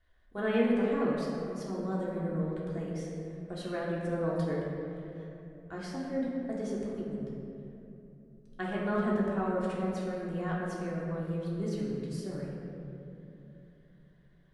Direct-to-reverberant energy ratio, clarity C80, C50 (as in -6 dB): -6.0 dB, 0.5 dB, -1.0 dB